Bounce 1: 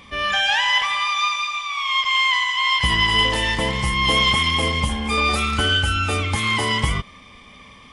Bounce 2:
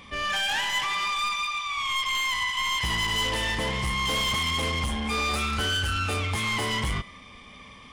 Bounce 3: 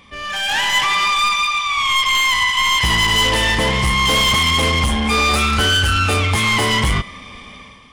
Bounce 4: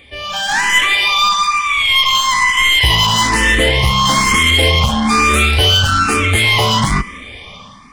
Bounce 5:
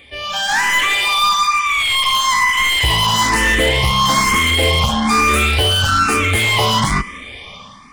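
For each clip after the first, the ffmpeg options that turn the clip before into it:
-af "asoftclip=type=tanh:threshold=-21dB,bandreject=f=332.3:t=h:w=4,bandreject=f=664.6:t=h:w=4,bandreject=f=996.9:t=h:w=4,bandreject=f=1.3292k:t=h:w=4,bandreject=f=1.6615k:t=h:w=4,bandreject=f=1.9938k:t=h:w=4,bandreject=f=2.3261k:t=h:w=4,bandreject=f=2.6584k:t=h:w=4,bandreject=f=2.9907k:t=h:w=4,bandreject=f=3.323k:t=h:w=4,bandreject=f=3.6553k:t=h:w=4,bandreject=f=3.9876k:t=h:w=4,bandreject=f=4.3199k:t=h:w=4,bandreject=f=4.6522k:t=h:w=4,bandreject=f=4.9845k:t=h:w=4,bandreject=f=5.3168k:t=h:w=4,bandreject=f=5.6491k:t=h:w=4,bandreject=f=5.9814k:t=h:w=4,bandreject=f=6.3137k:t=h:w=4,bandreject=f=6.646k:t=h:w=4,bandreject=f=6.9783k:t=h:w=4,bandreject=f=7.3106k:t=h:w=4,bandreject=f=7.6429k:t=h:w=4,bandreject=f=7.9752k:t=h:w=4,bandreject=f=8.3075k:t=h:w=4,bandreject=f=8.6398k:t=h:w=4,bandreject=f=8.9721k:t=h:w=4,bandreject=f=9.3044k:t=h:w=4,bandreject=f=9.6367k:t=h:w=4,bandreject=f=9.969k:t=h:w=4,bandreject=f=10.3013k:t=h:w=4,bandreject=f=10.6336k:t=h:w=4,bandreject=f=10.9659k:t=h:w=4,bandreject=f=11.2982k:t=h:w=4,volume=-2dB"
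-af "dynaudnorm=f=110:g=9:m=11dB"
-filter_complex "[0:a]asplit=2[a][b];[b]afreqshift=1.1[c];[a][c]amix=inputs=2:normalize=1,volume=6.5dB"
-filter_complex "[0:a]lowshelf=f=320:g=-3.5,acrossover=split=1500[a][b];[b]asoftclip=type=hard:threshold=-16dB[c];[a][c]amix=inputs=2:normalize=0"

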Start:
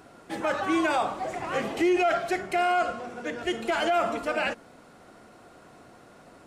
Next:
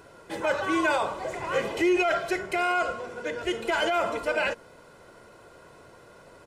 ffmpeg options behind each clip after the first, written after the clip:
-af "aecho=1:1:2:0.54"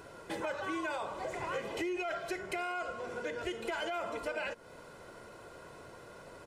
-af "acompressor=threshold=-36dB:ratio=4"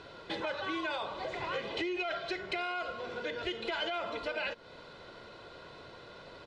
-af "lowpass=f=3.9k:t=q:w=3.5"

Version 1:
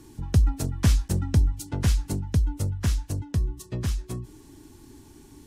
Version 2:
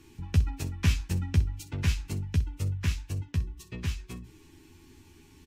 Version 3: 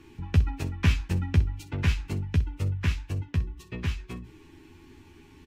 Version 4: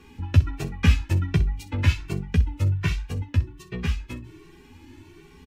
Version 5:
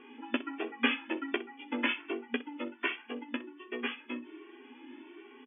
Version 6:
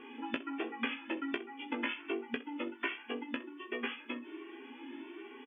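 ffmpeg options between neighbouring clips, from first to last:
-af "equalizer=f=250:t=o:w=0.67:g=-3,equalizer=f=630:t=o:w=0.67:g=-7,equalizer=f=2.5k:t=o:w=0.67:g=10,equalizer=f=10k:t=o:w=0.67:g=-6,aecho=1:1:12|62:0.596|0.178,volume=-5.5dB"
-af "bass=f=250:g=-3,treble=f=4k:g=-11,volume=5dB"
-filter_complex "[0:a]asplit=2[a][b];[b]adelay=2.1,afreqshift=1.3[c];[a][c]amix=inputs=2:normalize=1,volume=6.5dB"
-af "afftfilt=real='re*between(b*sr/4096,230,3500)':imag='im*between(b*sr/4096,230,3500)':win_size=4096:overlap=0.75"
-filter_complex "[0:a]acompressor=threshold=-37dB:ratio=4,asplit=2[a][b];[b]adelay=18,volume=-7.5dB[c];[a][c]amix=inputs=2:normalize=0,volume=2.5dB"

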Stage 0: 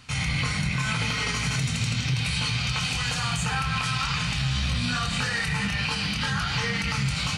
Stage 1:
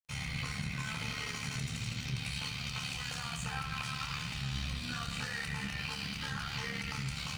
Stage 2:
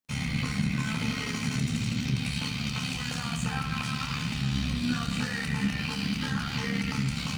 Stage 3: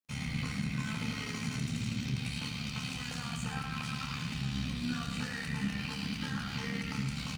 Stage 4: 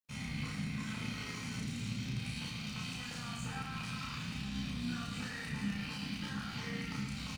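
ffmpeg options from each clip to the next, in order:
-af "bandreject=f=59.07:t=h:w=4,bandreject=f=118.14:t=h:w=4,bandreject=f=177.21:t=h:w=4,bandreject=f=236.28:t=h:w=4,bandreject=f=295.35:t=h:w=4,bandreject=f=354.42:t=h:w=4,bandreject=f=413.49:t=h:w=4,bandreject=f=472.56:t=h:w=4,bandreject=f=531.63:t=h:w=4,bandreject=f=590.7:t=h:w=4,bandreject=f=649.77:t=h:w=4,bandreject=f=708.84:t=h:w=4,bandreject=f=767.91:t=h:w=4,bandreject=f=826.98:t=h:w=4,bandreject=f=886.05:t=h:w=4,bandreject=f=945.12:t=h:w=4,bandreject=f=1.00419k:t=h:w=4,bandreject=f=1.06326k:t=h:w=4,bandreject=f=1.12233k:t=h:w=4,bandreject=f=1.1814k:t=h:w=4,bandreject=f=1.24047k:t=h:w=4,bandreject=f=1.29954k:t=h:w=4,bandreject=f=1.35861k:t=h:w=4,bandreject=f=1.41768k:t=h:w=4,bandreject=f=1.47675k:t=h:w=4,bandreject=f=1.53582k:t=h:w=4,bandreject=f=1.59489k:t=h:w=4,bandreject=f=1.65396k:t=h:w=4,bandreject=f=1.71303k:t=h:w=4,aeval=exprs='sgn(val(0))*max(abs(val(0))-0.0075,0)':c=same,tremolo=f=72:d=0.571,volume=-7.5dB"
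-af "equalizer=f=240:w=1.3:g=13,volume=4.5dB"
-af "aecho=1:1:109:0.316,volume=-6.5dB"
-filter_complex "[0:a]asplit=2[a][b];[b]adelay=34,volume=-2dB[c];[a][c]amix=inputs=2:normalize=0,volume=-5.5dB"

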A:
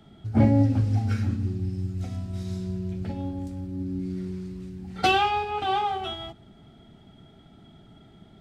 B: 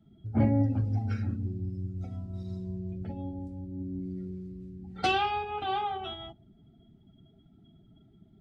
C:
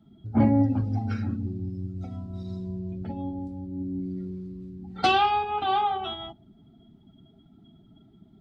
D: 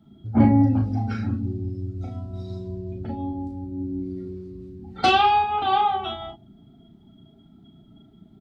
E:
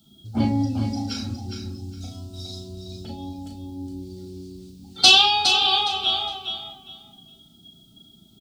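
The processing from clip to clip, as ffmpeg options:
-af "afftdn=nr=16:nf=-47,volume=-5.5dB"
-af "equalizer=f=250:t=o:w=1:g=6,equalizer=f=1k:t=o:w=1:g=9,equalizer=f=4k:t=o:w=1:g=6"
-filter_complex "[0:a]asplit=2[a][b];[b]adelay=35,volume=-5dB[c];[a][c]amix=inputs=2:normalize=0,volume=2.5dB"
-af "aecho=1:1:412|824|1236:0.447|0.0983|0.0216,aexciter=amount=15.6:drive=4.5:freq=3k,volume=-5.5dB"

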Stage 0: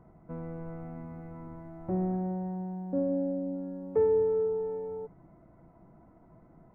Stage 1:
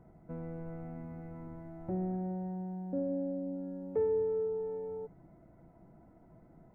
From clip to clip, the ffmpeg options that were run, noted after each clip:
-filter_complex "[0:a]equalizer=f=1.1k:w=4.4:g=-8.5,asplit=2[a][b];[b]acompressor=threshold=-37dB:ratio=6,volume=-1dB[c];[a][c]amix=inputs=2:normalize=0,volume=-7dB"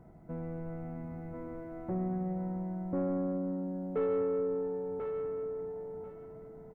-filter_complex "[0:a]asoftclip=type=tanh:threshold=-30.5dB,asplit=2[a][b];[b]aecho=0:1:1041|2082|3123:0.562|0.124|0.0272[c];[a][c]amix=inputs=2:normalize=0,volume=3dB"

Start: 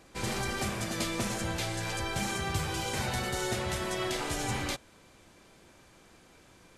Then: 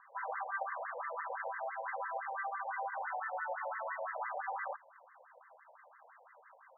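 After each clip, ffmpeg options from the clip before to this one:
-filter_complex "[0:a]acrossover=split=480|2200[a][b][c];[a]acompressor=threshold=-41dB:ratio=4[d];[b]acompressor=threshold=-41dB:ratio=4[e];[c]acompressor=threshold=-40dB:ratio=4[f];[d][e][f]amix=inputs=3:normalize=0,afftfilt=real='re*between(b*sr/1024,660*pow(1500/660,0.5+0.5*sin(2*PI*5.9*pts/sr))/1.41,660*pow(1500/660,0.5+0.5*sin(2*PI*5.9*pts/sr))*1.41)':imag='im*between(b*sr/1024,660*pow(1500/660,0.5+0.5*sin(2*PI*5.9*pts/sr))/1.41,660*pow(1500/660,0.5+0.5*sin(2*PI*5.9*pts/sr))*1.41)':win_size=1024:overlap=0.75,volume=6.5dB"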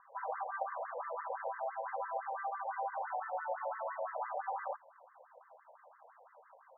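-af "lowpass=1k,volume=3dB"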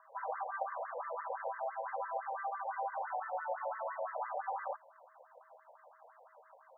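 -af "aeval=exprs='val(0)+0.000316*sin(2*PI*640*n/s)':c=same"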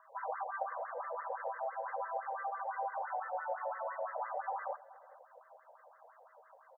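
-filter_complex "[0:a]asplit=2[a][b];[b]adelay=426,lowpass=f=860:p=1,volume=-17.5dB,asplit=2[c][d];[d]adelay=426,lowpass=f=860:p=1,volume=0.36,asplit=2[e][f];[f]adelay=426,lowpass=f=860:p=1,volume=0.36[g];[a][c][e][g]amix=inputs=4:normalize=0"

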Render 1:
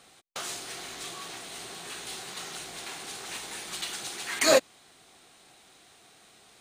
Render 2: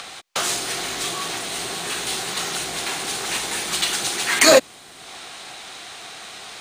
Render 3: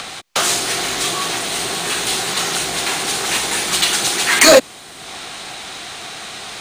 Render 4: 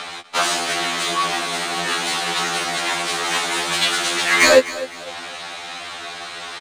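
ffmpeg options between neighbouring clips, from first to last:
-filter_complex "[0:a]acrossover=split=210|620|7100[a][b][c][d];[c]acompressor=mode=upward:threshold=-42dB:ratio=2.5[e];[a][b][e][d]amix=inputs=4:normalize=0,alimiter=level_in=14dB:limit=-1dB:release=50:level=0:latency=1,volume=-1dB"
-filter_complex "[0:a]acrossover=split=290|1000|5900[a][b][c][d];[a]acompressor=mode=upward:threshold=-47dB:ratio=2.5[e];[e][b][c][d]amix=inputs=4:normalize=0,asoftclip=type=tanh:threshold=-7.5dB,volume=6.5dB"
-filter_complex "[0:a]asplit=2[a][b];[b]highpass=f=720:p=1,volume=8dB,asoftclip=type=tanh:threshold=-1dB[c];[a][c]amix=inputs=2:normalize=0,lowpass=f=2.3k:p=1,volume=-6dB,aecho=1:1:254|508|762:0.158|0.0523|0.0173,afftfilt=real='re*2*eq(mod(b,4),0)':imag='im*2*eq(mod(b,4),0)':win_size=2048:overlap=0.75,volume=1dB"

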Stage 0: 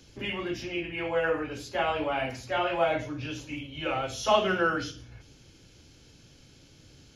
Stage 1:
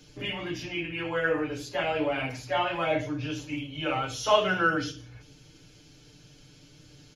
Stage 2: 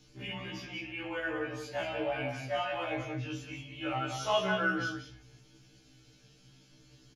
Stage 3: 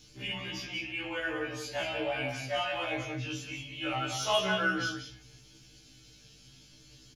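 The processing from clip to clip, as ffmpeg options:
-af "aecho=1:1:6.7:0.82,volume=-1dB"
-filter_complex "[0:a]asplit=2[a][b];[b]adelay=186.6,volume=-6dB,highshelf=f=4k:g=-4.2[c];[a][c]amix=inputs=2:normalize=0,afftfilt=real='re*1.73*eq(mod(b,3),0)':imag='im*1.73*eq(mod(b,3),0)':win_size=2048:overlap=0.75,volume=-4.5dB"
-filter_complex "[0:a]acrossover=split=190|410|2500[a][b][c][d];[d]aeval=exprs='0.0422*sin(PI/2*1.58*val(0)/0.0422)':c=same[e];[a][b][c][e]amix=inputs=4:normalize=0,aeval=exprs='val(0)+0.000631*(sin(2*PI*50*n/s)+sin(2*PI*2*50*n/s)/2+sin(2*PI*3*50*n/s)/3+sin(2*PI*4*50*n/s)/4+sin(2*PI*5*50*n/s)/5)':c=same"

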